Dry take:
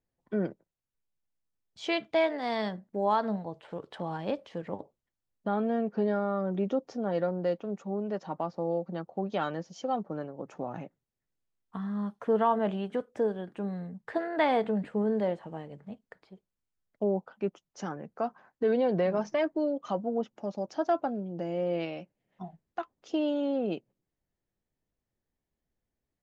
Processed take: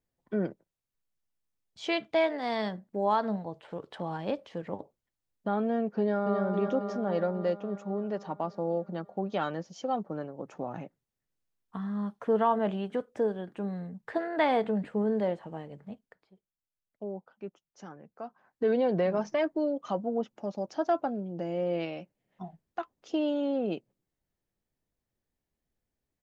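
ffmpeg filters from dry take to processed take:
-filter_complex "[0:a]asplit=2[a][b];[b]afade=t=in:st=5.99:d=0.01,afade=t=out:st=6.42:d=0.01,aecho=0:1:270|540|810|1080|1350|1620|1890|2160|2430|2700|2970|3240:0.595662|0.416964|0.291874|0.204312|0.143018|0.100113|0.0700791|0.0490553|0.0343387|0.0240371|0.016826|0.0117782[c];[a][c]amix=inputs=2:normalize=0,asplit=3[d][e][f];[d]atrim=end=16.17,asetpts=PTS-STARTPTS,afade=t=out:st=15.92:d=0.25:silence=0.334965[g];[e]atrim=start=16.17:end=18.39,asetpts=PTS-STARTPTS,volume=-9.5dB[h];[f]atrim=start=18.39,asetpts=PTS-STARTPTS,afade=t=in:d=0.25:silence=0.334965[i];[g][h][i]concat=n=3:v=0:a=1"

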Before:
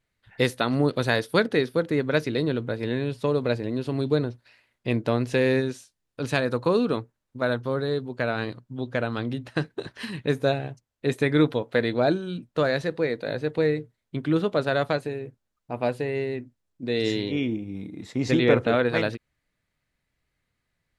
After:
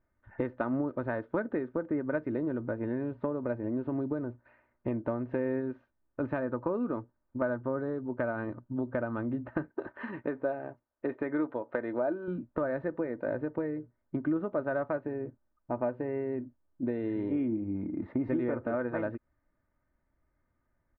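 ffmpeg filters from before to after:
-filter_complex "[0:a]asettb=1/sr,asplit=3[a][b][c];[a]atrim=end=9.714[d];[b]atrim=start=9.71:end=12.28,asetpts=PTS-STARTPTS,afade=t=in:d=0.004:c=qsin,afade=t=out:st=2.566:d=0.004:c=qsin,bass=f=250:g=-12,treble=f=4k:g=1[e];[c]atrim=start=12.276[f];[d][e]acrossfade=d=0.004:c1=hsin:c2=qsin[g];[g][f]acrossfade=d=0.004:c1=qsin:c2=hsin,lowpass=f=1.5k:w=0.5412,lowpass=f=1.5k:w=1.3066,acompressor=threshold=-31dB:ratio=6,aecho=1:1:3.3:0.48,volume=2dB"

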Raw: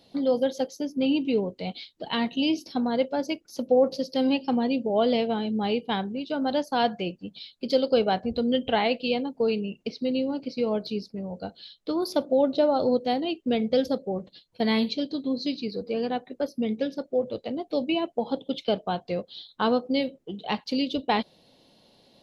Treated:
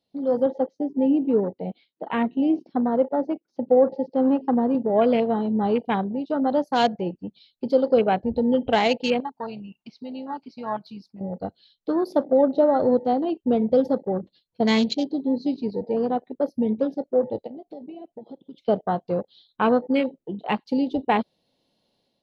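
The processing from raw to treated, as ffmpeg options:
-filter_complex "[0:a]asettb=1/sr,asplit=3[a][b][c];[a]atrim=end=0.464[d];[b]atrim=start=0.46:end=4.75,asetpts=PTS-STARTPTS,afade=t=in:d=0.004:c=qsin,afade=t=out:st=4.286:d=0.004:c=qsin,highpass=160,lowpass=2.1k[e];[c]atrim=start=4.746[f];[d][e]acrossfade=d=0.004:c1=hsin:c2=qsin[g];[g][f]acrossfade=d=0.004:c1=qsin:c2=hsin,asettb=1/sr,asplit=3[h][i][j];[h]atrim=end=9.204[k];[i]atrim=start=9.2:end=11.21,asetpts=PTS-STARTPTS,afade=t=in:d=0.004:c=qsin,afade=t=out:st=2.006:d=0.004:c=qsin,lowshelf=f=650:t=q:w=3:g=-10[l];[j]atrim=start=11.206[m];[k][l]acrossfade=d=0.004:c1=hsin:c2=qsin[n];[n][m]acrossfade=d=0.004:c1=qsin:c2=hsin,asplit=3[o][p][q];[o]afade=t=out:st=17.46:d=0.02[r];[p]acompressor=threshold=-40dB:ratio=6:attack=3.2:release=140:knee=1:detection=peak,afade=t=in:st=17.46:d=0.02,afade=t=out:st=18.67:d=0.02[s];[q]afade=t=in:st=18.67:d=0.02[t];[r][s][t]amix=inputs=3:normalize=0,afwtdn=0.02,dynaudnorm=f=120:g=5:m=9dB,volume=-4.5dB"

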